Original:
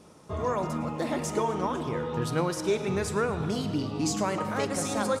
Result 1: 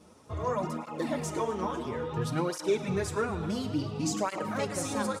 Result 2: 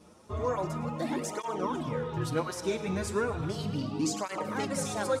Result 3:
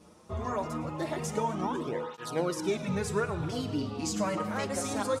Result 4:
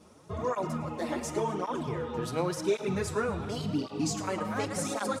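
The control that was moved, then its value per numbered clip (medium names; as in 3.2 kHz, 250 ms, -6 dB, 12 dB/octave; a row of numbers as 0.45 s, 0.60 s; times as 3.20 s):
cancelling through-zero flanger, nulls at: 0.58 Hz, 0.35 Hz, 0.23 Hz, 0.9 Hz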